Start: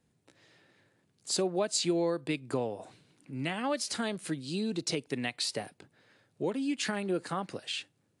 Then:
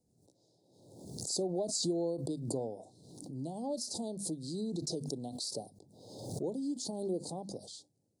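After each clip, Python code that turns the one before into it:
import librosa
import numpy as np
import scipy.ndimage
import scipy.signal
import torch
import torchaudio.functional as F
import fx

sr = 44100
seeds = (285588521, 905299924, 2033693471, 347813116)

y = scipy.signal.sosfilt(scipy.signal.cheby2(4, 50, [1300.0, 2700.0], 'bandstop', fs=sr, output='sos'), x)
y = fx.hum_notches(y, sr, base_hz=50, count=5)
y = fx.pre_swell(y, sr, db_per_s=52.0)
y = F.gain(torch.from_numpy(y), -4.5).numpy()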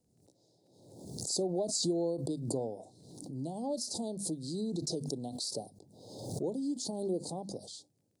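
y = fx.dmg_crackle(x, sr, seeds[0], per_s=18.0, level_db=-64.0)
y = F.gain(torch.from_numpy(y), 1.5).numpy()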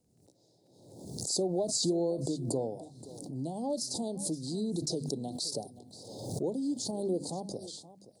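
y = x + 10.0 ** (-16.5 / 20.0) * np.pad(x, (int(525 * sr / 1000.0), 0))[:len(x)]
y = F.gain(torch.from_numpy(y), 2.0).numpy()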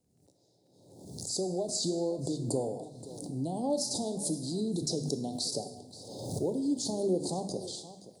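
y = fx.rider(x, sr, range_db=5, speed_s=2.0)
y = fx.rev_plate(y, sr, seeds[1], rt60_s=0.97, hf_ratio=0.85, predelay_ms=0, drr_db=8.0)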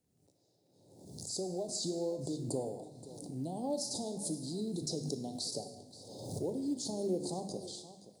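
y = fx.quant_companded(x, sr, bits=8)
y = fx.comb_fb(y, sr, f0_hz=51.0, decay_s=1.1, harmonics='all', damping=0.0, mix_pct=50)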